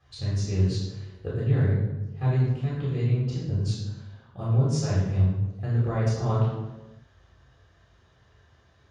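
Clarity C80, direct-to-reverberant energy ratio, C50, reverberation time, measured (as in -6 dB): 3.0 dB, -9.0 dB, 0.5 dB, 1.1 s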